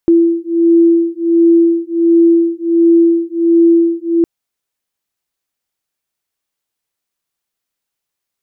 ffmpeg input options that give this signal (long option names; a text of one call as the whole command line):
ffmpeg -f lavfi -i "aevalsrc='0.299*(sin(2*PI*335*t)+sin(2*PI*336.4*t))':duration=4.16:sample_rate=44100" out.wav